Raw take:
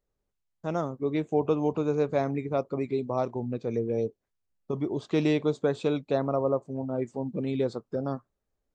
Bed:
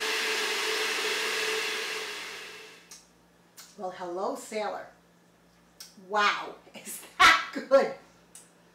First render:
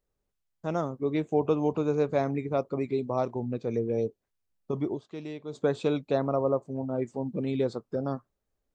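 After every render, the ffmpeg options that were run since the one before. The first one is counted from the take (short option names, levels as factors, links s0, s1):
-filter_complex "[0:a]asplit=3[s0][s1][s2];[s0]atrim=end=5.23,asetpts=PTS-STARTPTS,afade=t=out:st=4.94:d=0.29:c=exp:silence=0.199526[s3];[s1]atrim=start=5.23:end=5.27,asetpts=PTS-STARTPTS,volume=0.2[s4];[s2]atrim=start=5.27,asetpts=PTS-STARTPTS,afade=t=in:d=0.29:c=exp:silence=0.199526[s5];[s3][s4][s5]concat=n=3:v=0:a=1"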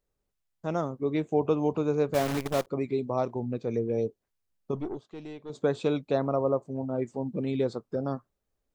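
-filter_complex "[0:a]asettb=1/sr,asplit=3[s0][s1][s2];[s0]atrim=end=2.144[s3];[s1]atrim=start=2.14:end=2.67,asetpts=PTS-STARTPTS,afade=t=in:d=0.004:c=qsin,afade=t=out:st=0.526:d=0.004:c=qsin,acrusher=bits=6:dc=4:mix=0:aa=0.000001[s4];[s2]atrim=start=2.666[s5];[s3][s4]acrossfade=d=0.004:c1=hsin:c2=qsin[s6];[s6][s5]acrossfade=d=0.004:c1=qsin:c2=hsin,asettb=1/sr,asplit=3[s7][s8][s9];[s7]atrim=end=4.754[s10];[s8]atrim=start=4.75:end=5.5,asetpts=PTS-STARTPTS,afade=t=in:d=0.004:c=qsin,afade=t=out:st=0.746:d=0.004:c=qsin,aeval=exprs='(tanh(22.4*val(0)+0.55)-tanh(0.55))/22.4':c=same[s11];[s9]atrim=start=5.496[s12];[s10][s11]acrossfade=d=0.004:c1=hsin:c2=qsin[s13];[s13][s12]acrossfade=d=0.004:c1=qsin:c2=hsin"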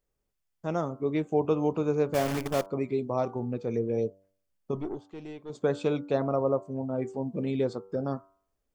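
-af "bandreject=f=3900:w=12,bandreject=f=96.55:t=h:w=4,bandreject=f=193.1:t=h:w=4,bandreject=f=289.65:t=h:w=4,bandreject=f=386.2:t=h:w=4,bandreject=f=482.75:t=h:w=4,bandreject=f=579.3:t=h:w=4,bandreject=f=675.85:t=h:w=4,bandreject=f=772.4:t=h:w=4,bandreject=f=868.95:t=h:w=4,bandreject=f=965.5:t=h:w=4,bandreject=f=1062.05:t=h:w=4,bandreject=f=1158.6:t=h:w=4,bandreject=f=1255.15:t=h:w=4,bandreject=f=1351.7:t=h:w=4,bandreject=f=1448.25:t=h:w=4,bandreject=f=1544.8:t=h:w=4"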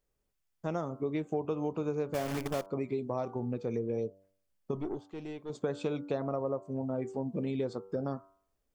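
-af "acompressor=threshold=0.0316:ratio=4"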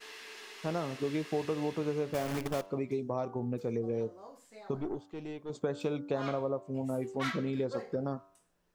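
-filter_complex "[1:a]volume=0.112[s0];[0:a][s0]amix=inputs=2:normalize=0"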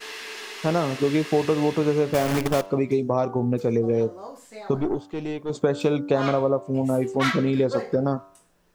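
-af "volume=3.76"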